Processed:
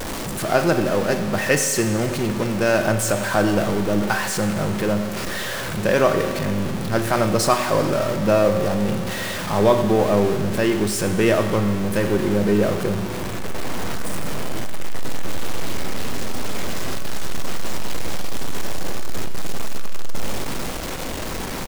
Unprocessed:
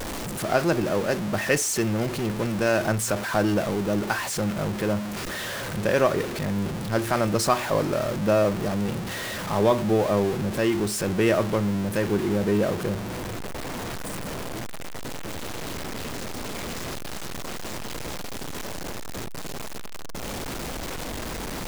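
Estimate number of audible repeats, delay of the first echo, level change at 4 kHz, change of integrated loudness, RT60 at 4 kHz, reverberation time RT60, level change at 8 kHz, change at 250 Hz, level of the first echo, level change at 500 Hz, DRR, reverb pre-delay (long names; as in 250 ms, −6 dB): 1, 97 ms, +4.5 dB, +4.0 dB, 2.0 s, 2.1 s, +4.0 dB, +4.0 dB, −16.5 dB, +4.5 dB, 6.5 dB, 5 ms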